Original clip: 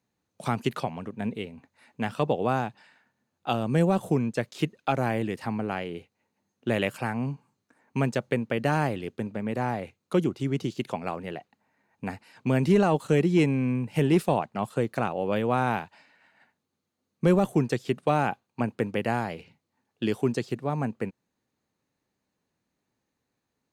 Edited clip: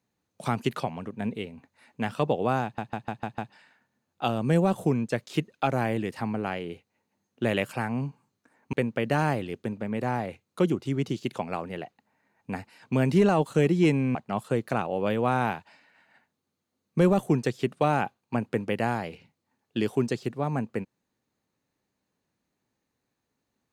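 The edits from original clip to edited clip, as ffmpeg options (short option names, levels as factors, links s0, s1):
-filter_complex "[0:a]asplit=8[s0][s1][s2][s3][s4][s5][s6][s7];[s0]atrim=end=2.782[s8];[s1]atrim=start=2.628:end=2.782[s9];[s2]atrim=start=2.628:end=2.782[s10];[s3]atrim=start=2.628:end=2.782[s11];[s4]atrim=start=2.628:end=2.782[s12];[s5]atrim=start=2.628:end=7.982[s13];[s6]atrim=start=8.268:end=13.692[s14];[s7]atrim=start=14.408[s15];[s8][s9]acrossfade=d=0.004:c1=hsin:c2=hsin[s16];[s16][s10]acrossfade=d=0.004:c1=hsin:c2=hsin[s17];[s17][s11]acrossfade=d=0.004:c1=hsin:c2=hsin[s18];[s18][s12]acrossfade=d=0.004:c1=hsin:c2=hsin[s19];[s19][s13]acrossfade=d=0.004:c1=hsin:c2=hsin[s20];[s20][s14]acrossfade=d=0.004:c1=hsin:c2=hsin[s21];[s21][s15]acrossfade=d=0.004:c1=hsin:c2=hsin"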